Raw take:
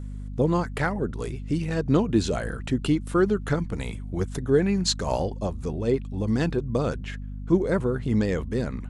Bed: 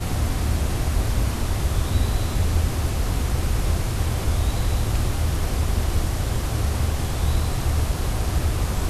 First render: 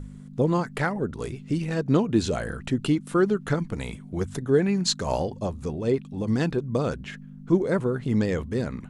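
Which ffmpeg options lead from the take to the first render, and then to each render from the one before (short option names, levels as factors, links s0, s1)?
-af "bandreject=f=50:t=h:w=4,bandreject=f=100:t=h:w=4"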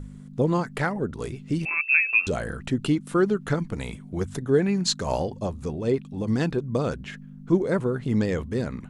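-filter_complex "[0:a]asettb=1/sr,asplit=3[s0][s1][s2];[s0]atrim=end=1.654[s3];[s1]atrim=start=1.65:end=2.27,asetpts=PTS-STARTPTS,afade=t=in:d=0.004:c=qsin,afade=t=out:st=0.616:d=0.004:c=qsin,lowpass=f=2400:t=q:w=0.5098,lowpass=f=2400:t=q:w=0.6013,lowpass=f=2400:t=q:w=0.9,lowpass=f=2400:t=q:w=2.563,afreqshift=-2800[s4];[s2]atrim=start=2.266[s5];[s3][s4]acrossfade=d=0.004:c1=hsin:c2=qsin[s6];[s6][s5]acrossfade=d=0.004:c1=qsin:c2=hsin"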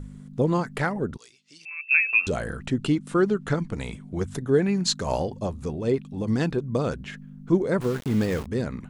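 -filter_complex "[0:a]asettb=1/sr,asplit=3[s0][s1][s2];[s0]atrim=end=1.174[s3];[s1]atrim=start=1.17:end=1.91,asetpts=PTS-STARTPTS,afade=t=in:d=0.004:c=qsin,afade=t=out:st=0.736:d=0.004:c=qsin,bandpass=f=5200:t=q:w=1.7[s4];[s2]atrim=start=1.906[s5];[s3][s4]acrossfade=d=0.004:c1=hsin:c2=qsin[s6];[s6][s5]acrossfade=d=0.004:c1=qsin:c2=hsin,asettb=1/sr,asplit=3[s7][s8][s9];[s7]atrim=end=2.654[s10];[s8]atrim=start=2.65:end=4.25,asetpts=PTS-STARTPTS,afade=t=in:d=0.004:c=qsin,afade=t=out:st=1.596:d=0.004:c=qsin,lowpass=f=9800:w=0.5412,lowpass=f=9800:w=1.3066[s11];[s9]atrim=start=4.246[s12];[s10][s11]acrossfade=d=0.004:c1=hsin:c2=qsin[s13];[s13][s12]acrossfade=d=0.004:c1=qsin:c2=hsin,asettb=1/sr,asplit=3[s14][s15][s16];[s14]atrim=end=7.814[s17];[s15]atrim=start=7.81:end=8.46,asetpts=PTS-STARTPTS,afade=t=in:d=0.004:c=qsin,afade=t=out:st=0.646:d=0.004:c=qsin,aeval=exprs='val(0)*gte(abs(val(0)),0.0224)':c=same[s18];[s16]atrim=start=8.456[s19];[s17][s18]acrossfade=d=0.004:c1=hsin:c2=qsin[s20];[s20][s19]acrossfade=d=0.004:c1=qsin:c2=hsin"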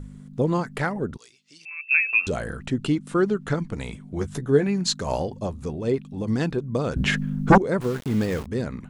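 -filter_complex "[0:a]asettb=1/sr,asplit=3[s0][s1][s2];[s0]atrim=end=4.154[s3];[s1]atrim=start=4.15:end=4.67,asetpts=PTS-STARTPTS,afade=t=in:d=0.004:c=qsin,afade=t=out:st=0.516:d=0.004:c=qsin,asplit=2[s4][s5];[s5]adelay=14,volume=0.447[s6];[s4][s6]amix=inputs=2:normalize=0,atrim=end_sample=22932[s7];[s2]atrim=start=4.666[s8];[s3][s7]acrossfade=d=0.004:c1=hsin:c2=qsin[s9];[s9][s8]acrossfade=d=0.004:c1=qsin:c2=hsin,asettb=1/sr,asplit=3[s10][s11][s12];[s10]atrim=end=6.964[s13];[s11]atrim=start=6.96:end=7.58,asetpts=PTS-STARTPTS,afade=t=in:d=0.004:c=qsin,afade=t=out:st=0.616:d=0.004:c=qsin,aeval=exprs='0.398*sin(PI/2*3.98*val(0)/0.398)':c=same[s14];[s12]atrim=start=7.576[s15];[s13][s14]acrossfade=d=0.004:c1=hsin:c2=qsin[s16];[s16][s15]acrossfade=d=0.004:c1=qsin:c2=hsin"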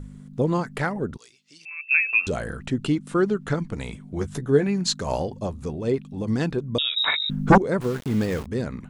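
-filter_complex "[0:a]asettb=1/sr,asplit=3[s0][s1][s2];[s0]atrim=end=6.784[s3];[s1]atrim=start=6.78:end=7.3,asetpts=PTS-STARTPTS,afade=t=in:d=0.004:c=qsin,afade=t=out:st=0.516:d=0.004:c=qsin,lowpass=f=3300:t=q:w=0.5098,lowpass=f=3300:t=q:w=0.6013,lowpass=f=3300:t=q:w=0.9,lowpass=f=3300:t=q:w=2.563,afreqshift=-3900[s4];[s2]atrim=start=7.296[s5];[s3][s4]acrossfade=d=0.004:c1=hsin:c2=qsin[s6];[s6][s5]acrossfade=d=0.004:c1=qsin:c2=hsin"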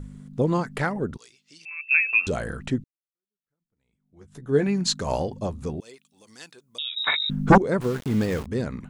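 -filter_complex "[0:a]asettb=1/sr,asplit=3[s0][s1][s2];[s0]atrim=end=5.804[s3];[s1]atrim=start=5.8:end=7.07,asetpts=PTS-STARTPTS,afade=t=in:d=0.004:c=qsin,afade=t=out:st=1.266:d=0.004:c=qsin,aderivative[s4];[s2]atrim=start=7.066[s5];[s3][s4]acrossfade=d=0.004:c1=hsin:c2=qsin[s6];[s6][s5]acrossfade=d=0.004:c1=qsin:c2=hsin,asplit=2[s7][s8];[s7]atrim=end=2.84,asetpts=PTS-STARTPTS,afade=t=out:st=2.836:d=0.004:c=hsin[s9];[s8]atrim=start=2.84,asetpts=PTS-STARTPTS,afade=t=in:d=1.76:c=exp[s10];[s9][s10]concat=n=2:v=0:a=1"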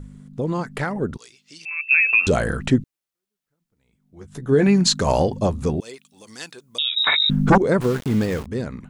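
-af "alimiter=limit=0.168:level=0:latency=1:release=49,dynaudnorm=f=230:g=11:m=2.66"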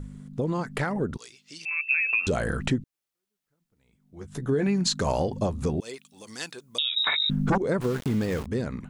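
-af "acompressor=threshold=0.0631:ratio=3"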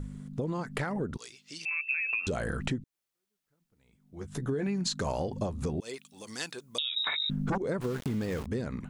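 -af "acompressor=threshold=0.0282:ratio=2.5"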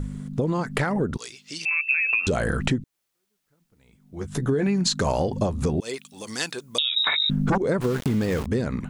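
-af "volume=2.66"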